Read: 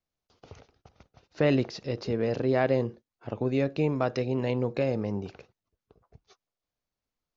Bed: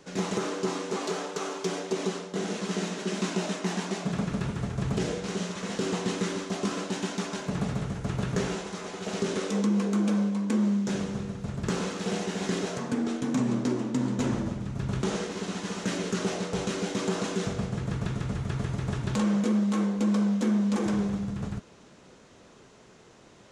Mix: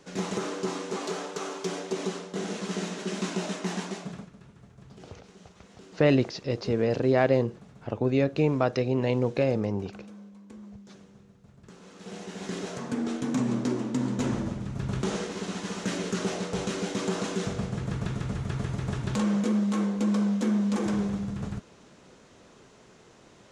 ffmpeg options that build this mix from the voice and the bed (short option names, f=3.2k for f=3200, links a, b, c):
-filter_complex "[0:a]adelay=4600,volume=2.5dB[a];[1:a]volume=19dB,afade=t=out:st=3.79:d=0.51:silence=0.105925,afade=t=in:st=11.81:d=1.34:silence=0.0944061[b];[a][b]amix=inputs=2:normalize=0"